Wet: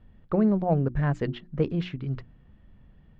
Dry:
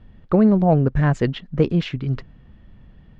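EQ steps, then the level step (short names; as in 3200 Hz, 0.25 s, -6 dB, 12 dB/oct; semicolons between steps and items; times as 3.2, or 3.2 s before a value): LPF 3800 Hz 6 dB/oct; notches 60/120/180/240/300/360 Hz; -7.0 dB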